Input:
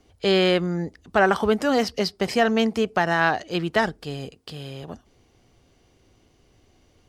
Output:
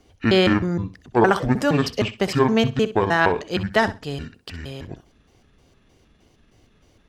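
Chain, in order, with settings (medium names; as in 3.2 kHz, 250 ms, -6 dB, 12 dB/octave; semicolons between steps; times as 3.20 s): pitch shift switched off and on -9.5 st, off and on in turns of 155 ms; flutter echo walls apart 10.9 m, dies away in 0.26 s; trim +2.5 dB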